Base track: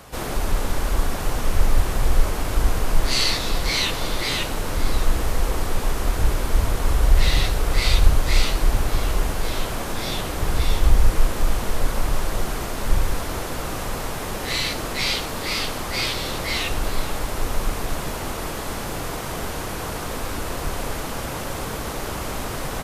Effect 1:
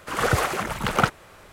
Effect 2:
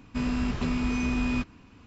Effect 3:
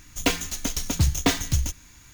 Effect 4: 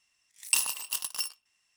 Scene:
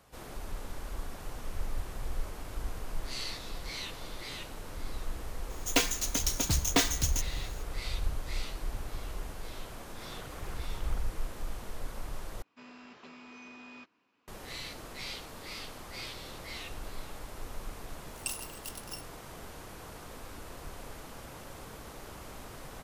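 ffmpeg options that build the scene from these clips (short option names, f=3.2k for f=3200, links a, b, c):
-filter_complex "[0:a]volume=-17.5dB[a];[3:a]bass=f=250:g=-7,treble=f=4k:g=3[b];[1:a]acompressor=threshold=-32dB:ratio=6:attack=3.2:release=140:knee=1:detection=peak[c];[2:a]highpass=420,lowpass=6k[d];[a]asplit=2[e][f];[e]atrim=end=12.424[g];[d]atrim=end=1.86,asetpts=PTS-STARTPTS,volume=-15dB[h];[f]atrim=start=14.276[i];[b]atrim=end=2.13,asetpts=PTS-STARTPTS,volume=-3.5dB,afade=t=in:d=0.004:c=hsin,afade=t=out:st=2.126:d=0.004:c=hsin,adelay=5500[j];[c]atrim=end=1.52,asetpts=PTS-STARTPTS,volume=-15dB,afade=t=in:d=0.004:c=hsin,afade=t=out:st=1.516:d=0.004:c=hsin,adelay=438354S[k];[4:a]atrim=end=1.76,asetpts=PTS-STARTPTS,volume=-11.5dB,afade=t=in:d=0.004:c=hsin,afade=t=out:st=1.756:d=0.004:c=hsin,adelay=17730[l];[g][h]acrossfade=d=0.004:c1=hsin:c2=hsin[m];[m][i]acrossfade=d=0.004:c1=hsin:c2=hsin[n];[n][j][k][l]amix=inputs=4:normalize=0"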